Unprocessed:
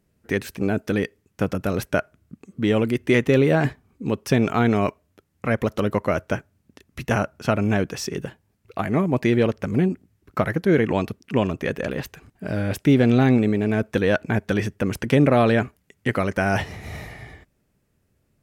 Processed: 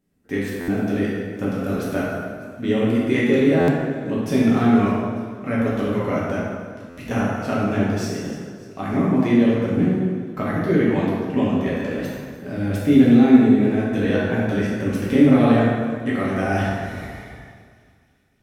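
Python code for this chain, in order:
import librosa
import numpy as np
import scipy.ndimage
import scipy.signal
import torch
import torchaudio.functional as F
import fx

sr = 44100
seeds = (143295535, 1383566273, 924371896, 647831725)

p1 = fx.small_body(x, sr, hz=(250.0, 3500.0), ring_ms=45, db=8)
p2 = p1 + fx.echo_wet_highpass(p1, sr, ms=298, feedback_pct=60, hz=3000.0, wet_db=-16.5, dry=0)
p3 = fx.rev_plate(p2, sr, seeds[0], rt60_s=1.9, hf_ratio=0.6, predelay_ms=0, drr_db=-7.5)
p4 = fx.buffer_glitch(p3, sr, at_s=(0.6, 3.6, 6.89), block=512, repeats=6)
y = F.gain(torch.from_numpy(p4), -9.0).numpy()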